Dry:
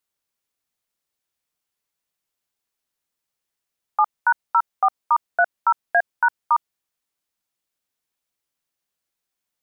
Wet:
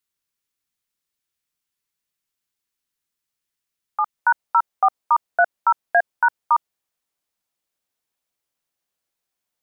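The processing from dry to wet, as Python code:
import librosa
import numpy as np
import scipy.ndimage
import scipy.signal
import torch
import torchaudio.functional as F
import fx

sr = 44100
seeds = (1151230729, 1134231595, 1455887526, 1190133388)

y = fx.peak_eq(x, sr, hz=650.0, db=fx.steps((0.0, -7.0), (4.18, 2.5)), octaves=1.3)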